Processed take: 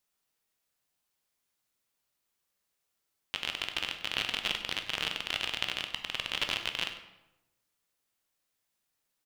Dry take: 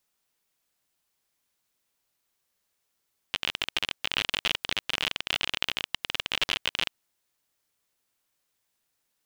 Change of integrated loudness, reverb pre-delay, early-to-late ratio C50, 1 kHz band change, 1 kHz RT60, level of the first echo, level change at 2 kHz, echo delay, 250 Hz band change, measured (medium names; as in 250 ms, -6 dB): -3.5 dB, 12 ms, 8.0 dB, -3.0 dB, 0.90 s, -14.0 dB, -3.5 dB, 98 ms, -3.0 dB